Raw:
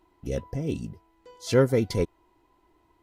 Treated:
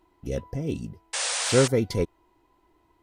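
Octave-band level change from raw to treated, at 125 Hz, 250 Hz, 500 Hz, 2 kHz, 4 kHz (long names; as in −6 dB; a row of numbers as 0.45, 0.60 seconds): 0.0, 0.0, 0.0, +6.0, +10.0 decibels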